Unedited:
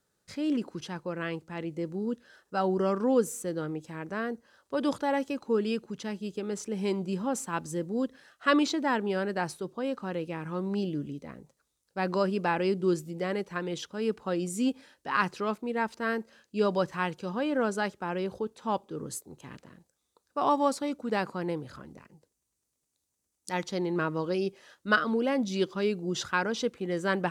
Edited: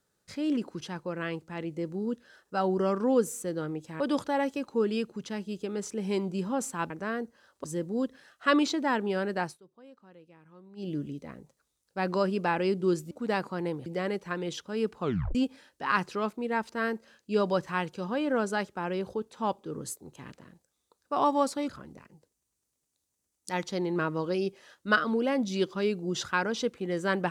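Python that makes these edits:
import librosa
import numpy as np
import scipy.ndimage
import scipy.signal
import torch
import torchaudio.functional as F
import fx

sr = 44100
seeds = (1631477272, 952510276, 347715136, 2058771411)

y = fx.edit(x, sr, fx.move(start_s=4.0, length_s=0.74, to_s=7.64),
    fx.fade_down_up(start_s=9.42, length_s=1.5, db=-20.5, fade_s=0.16),
    fx.tape_stop(start_s=14.26, length_s=0.34),
    fx.move(start_s=20.94, length_s=0.75, to_s=13.11), tone=tone)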